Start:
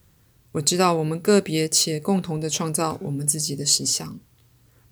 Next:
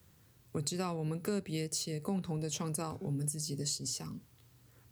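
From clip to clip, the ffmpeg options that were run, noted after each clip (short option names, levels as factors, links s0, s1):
-filter_complex "[0:a]highpass=66,acrossover=split=130[s0][s1];[s1]acompressor=threshold=0.0251:ratio=4[s2];[s0][s2]amix=inputs=2:normalize=0,volume=0.596"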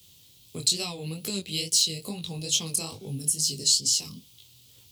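-af "flanger=delay=18:depth=7:speed=2.3,highshelf=f=2300:t=q:w=3:g=12.5,volume=1.41"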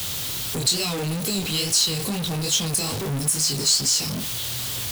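-af "aeval=exprs='val(0)+0.5*0.0708*sgn(val(0))':c=same"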